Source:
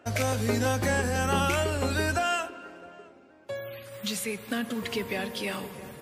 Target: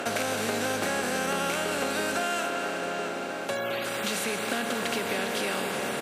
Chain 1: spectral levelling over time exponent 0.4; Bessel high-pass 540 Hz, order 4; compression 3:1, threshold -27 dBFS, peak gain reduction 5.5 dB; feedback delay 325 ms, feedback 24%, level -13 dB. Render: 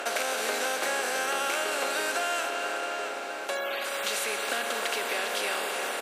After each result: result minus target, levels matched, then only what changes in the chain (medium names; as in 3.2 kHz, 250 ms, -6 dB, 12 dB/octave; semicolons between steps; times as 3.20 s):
echo 113 ms late; 250 Hz band -10.5 dB
change: feedback delay 212 ms, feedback 24%, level -13 dB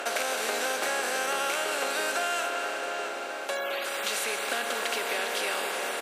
250 Hz band -10.5 dB
change: Bessel high-pass 200 Hz, order 4